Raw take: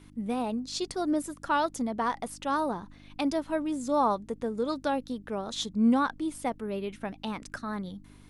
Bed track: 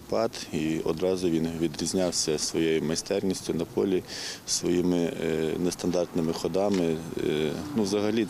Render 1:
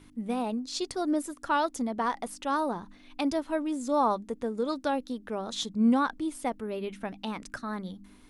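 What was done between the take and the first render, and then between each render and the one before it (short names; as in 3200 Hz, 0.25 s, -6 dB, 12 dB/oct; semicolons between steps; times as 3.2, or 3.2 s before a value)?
de-hum 50 Hz, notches 4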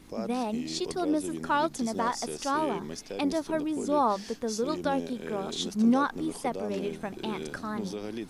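add bed track -11 dB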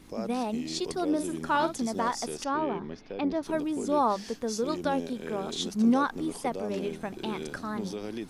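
1.11–1.79 doubler 50 ms -10 dB; 2.44–3.43 air absorption 280 m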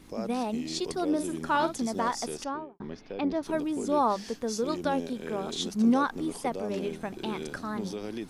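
2.34–2.8 studio fade out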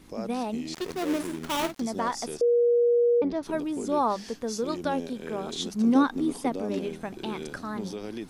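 0.74–1.8 switching dead time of 0.28 ms; 2.41–3.22 bleep 477 Hz -18 dBFS; 5.95–6.79 small resonant body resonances 270/3700 Hz, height 10 dB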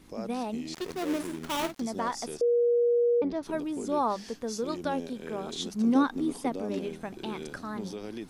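gain -2.5 dB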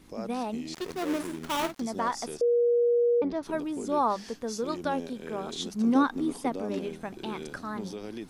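dynamic EQ 1200 Hz, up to +3 dB, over -41 dBFS, Q 1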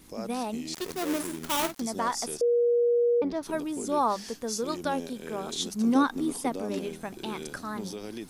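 high shelf 6100 Hz +12 dB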